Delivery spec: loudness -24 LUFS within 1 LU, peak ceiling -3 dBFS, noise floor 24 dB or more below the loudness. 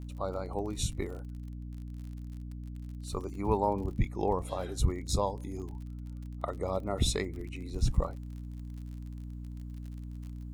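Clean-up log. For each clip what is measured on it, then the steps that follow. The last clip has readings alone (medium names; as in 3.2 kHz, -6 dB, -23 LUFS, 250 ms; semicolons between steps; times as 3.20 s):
tick rate 43 per s; hum 60 Hz; highest harmonic 300 Hz; hum level -38 dBFS; loudness -35.5 LUFS; peak level -14.0 dBFS; loudness target -24.0 LUFS
-> de-click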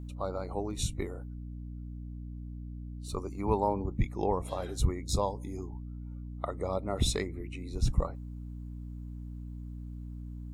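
tick rate 0.19 per s; hum 60 Hz; highest harmonic 300 Hz; hum level -38 dBFS
-> hum notches 60/120/180/240/300 Hz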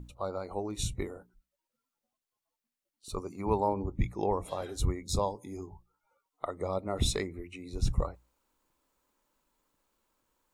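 hum not found; loudness -34.5 LUFS; peak level -15.0 dBFS; loudness target -24.0 LUFS
-> trim +10.5 dB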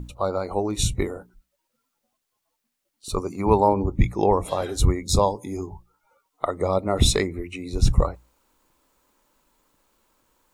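loudness -24.0 LUFS; peak level -4.5 dBFS; noise floor -79 dBFS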